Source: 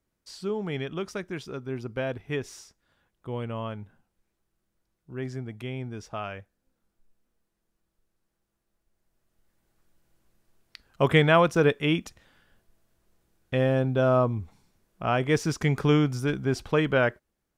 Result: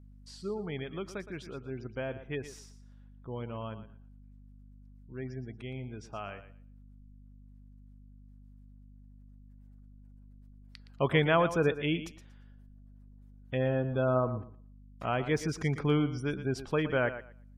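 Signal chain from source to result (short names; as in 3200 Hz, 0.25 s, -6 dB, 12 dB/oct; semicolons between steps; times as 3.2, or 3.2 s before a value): 13.62–15.38 sample gate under -35 dBFS; spectral gate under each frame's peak -30 dB strong; hum 50 Hz, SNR 18 dB; on a send: thinning echo 0.117 s, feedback 19%, high-pass 170 Hz, level -12 dB; on the sum: gain -6 dB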